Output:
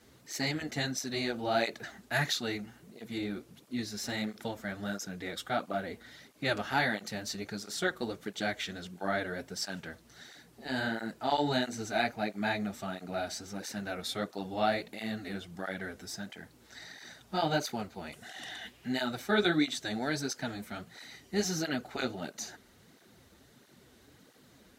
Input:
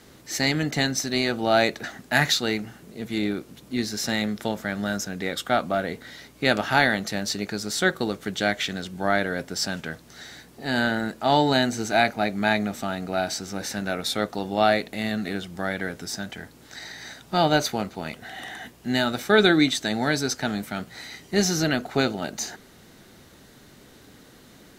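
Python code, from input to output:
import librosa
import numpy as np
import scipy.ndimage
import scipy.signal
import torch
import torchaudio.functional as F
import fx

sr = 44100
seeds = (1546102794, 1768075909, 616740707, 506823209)

y = fx.peak_eq(x, sr, hz=fx.line((18.12, 10000.0), (18.87, 2100.0)), db=11.0, octaves=1.4, at=(18.12, 18.87), fade=0.02)
y = fx.flanger_cancel(y, sr, hz=1.5, depth_ms=7.7)
y = y * librosa.db_to_amplitude(-6.5)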